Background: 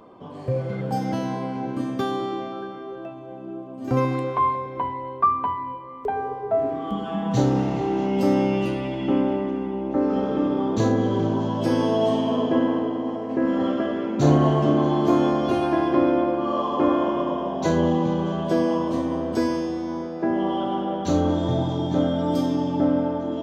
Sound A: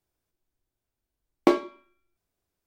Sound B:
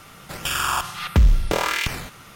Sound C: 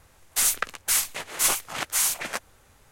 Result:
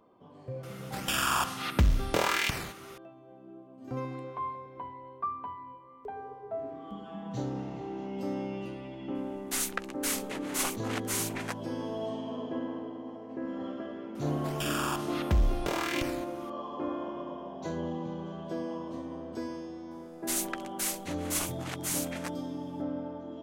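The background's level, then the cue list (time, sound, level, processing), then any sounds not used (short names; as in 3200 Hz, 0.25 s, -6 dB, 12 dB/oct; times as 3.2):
background -14.5 dB
0.63 add B -5 dB + HPF 70 Hz 6 dB/oct
9.15 add C -5.5 dB + high shelf 3900 Hz -5.5 dB
14.15 add B -10.5 dB
19.91 add C -10 dB
not used: A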